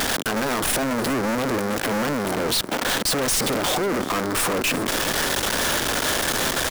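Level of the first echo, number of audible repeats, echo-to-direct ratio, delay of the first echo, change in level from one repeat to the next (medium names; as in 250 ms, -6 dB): -15.0 dB, 2, -15.0 dB, 366 ms, -14.5 dB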